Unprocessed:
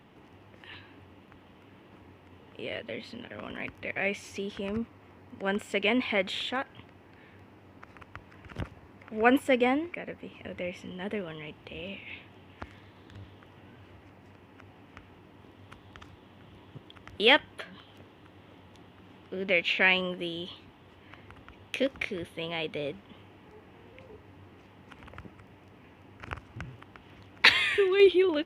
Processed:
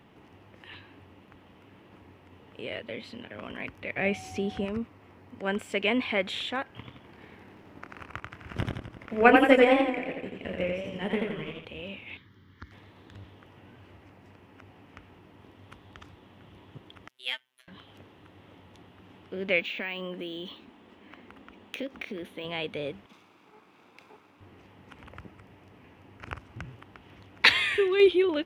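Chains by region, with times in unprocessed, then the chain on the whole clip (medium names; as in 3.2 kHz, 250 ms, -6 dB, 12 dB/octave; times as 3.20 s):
3.97–4.64 s: bass shelf 350 Hz +9 dB + whistle 750 Hz -44 dBFS
6.71–11.65 s: doubling 26 ms -6 dB + transient shaper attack +6 dB, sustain -9 dB + modulated delay 86 ms, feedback 55%, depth 108 cents, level -3 dB
12.17–12.72 s: peaking EQ 580 Hz -6 dB 2 oct + static phaser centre 2.6 kHz, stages 6
17.08–17.68 s: differentiator + robot voice 128 Hz + upward expansion, over -43 dBFS
19.60–22.45 s: resonant low shelf 170 Hz -6.5 dB, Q 3 + compression 3:1, threshold -33 dBFS + decimation joined by straight lines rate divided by 2×
23.06–24.41 s: comb filter that takes the minimum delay 0.81 ms + high-pass 270 Hz + three bands expanded up and down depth 40%
whole clip: none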